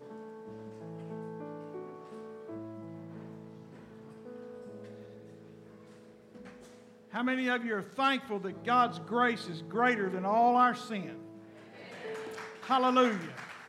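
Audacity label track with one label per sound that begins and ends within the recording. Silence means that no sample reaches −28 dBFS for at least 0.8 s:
7.150000	10.990000	sound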